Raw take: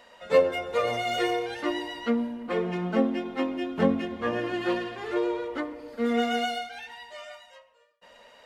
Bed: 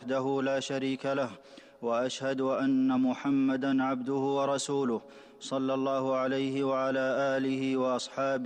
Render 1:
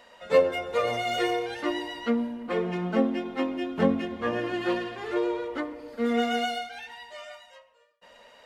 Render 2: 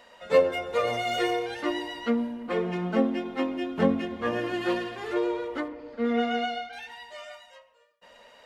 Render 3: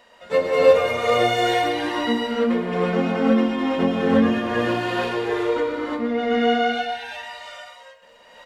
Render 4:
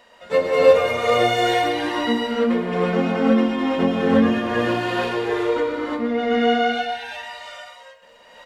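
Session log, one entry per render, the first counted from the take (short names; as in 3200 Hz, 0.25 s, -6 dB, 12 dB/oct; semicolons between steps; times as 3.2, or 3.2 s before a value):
nothing audible
4.25–5.13 high shelf 8200 Hz +7 dB; 5.68–6.73 air absorption 150 m
echo 0.125 s -13 dB; non-linear reverb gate 0.38 s rising, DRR -6.5 dB
gain +1 dB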